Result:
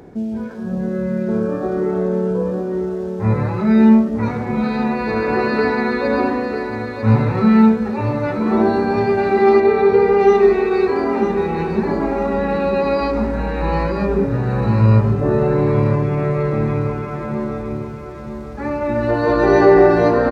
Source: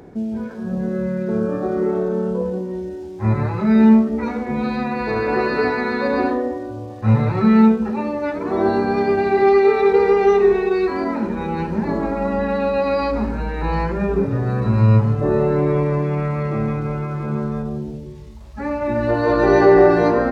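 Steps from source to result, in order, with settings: 9.6–10.2 high shelf 3600 Hz -10.5 dB; feedback echo 0.948 s, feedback 42%, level -8 dB; gain +1 dB

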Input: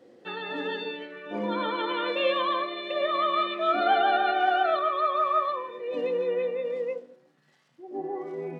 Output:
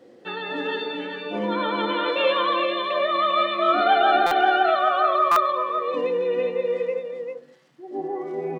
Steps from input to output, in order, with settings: echo 0.397 s -5.5 dB; stuck buffer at 4.26/5.31, samples 256, times 8; gain +4 dB

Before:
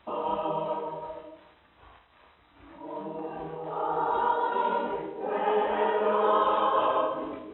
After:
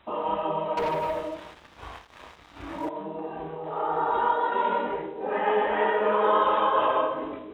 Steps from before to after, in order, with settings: dynamic EQ 1900 Hz, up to +7 dB, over -49 dBFS, Q 2.7; 0.77–2.89 sample leveller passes 3; gain +1.5 dB

